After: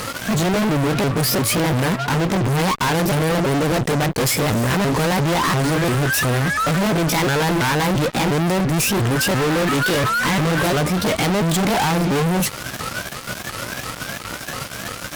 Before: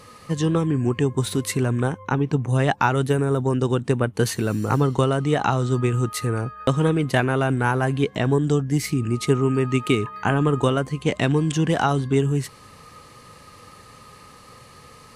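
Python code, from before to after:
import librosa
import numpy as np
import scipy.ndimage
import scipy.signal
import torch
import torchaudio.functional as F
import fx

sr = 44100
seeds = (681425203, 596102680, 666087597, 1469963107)

y = fx.pitch_ramps(x, sr, semitones=6.0, every_ms=346)
y = fx.fuzz(y, sr, gain_db=43.0, gate_db=-47.0)
y = F.gain(torch.from_numpy(y), -4.0).numpy()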